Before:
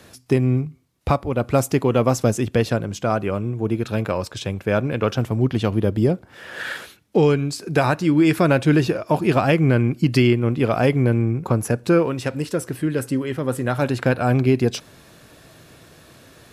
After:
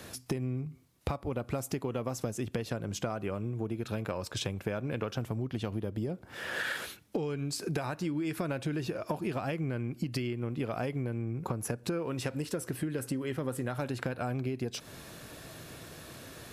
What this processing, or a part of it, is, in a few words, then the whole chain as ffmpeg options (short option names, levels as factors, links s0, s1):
serial compression, leveller first: -af "acompressor=threshold=0.1:ratio=2.5,acompressor=threshold=0.0282:ratio=6,highshelf=f=10000:g=5"